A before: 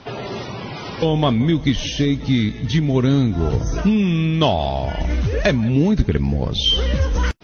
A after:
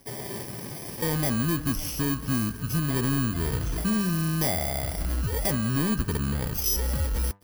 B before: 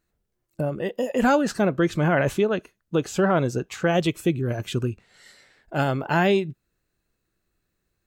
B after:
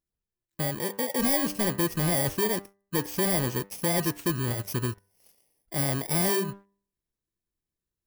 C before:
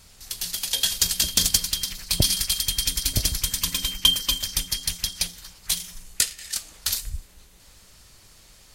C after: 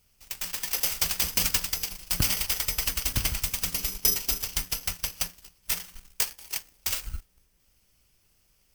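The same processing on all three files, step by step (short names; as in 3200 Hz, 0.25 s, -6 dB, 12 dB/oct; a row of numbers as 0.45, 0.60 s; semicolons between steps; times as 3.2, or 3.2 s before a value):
FFT order left unsorted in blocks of 32 samples; de-hum 99.24 Hz, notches 20; sample leveller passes 2; match loudness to -27 LUFS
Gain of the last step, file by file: -14.5, -10.0, -10.5 dB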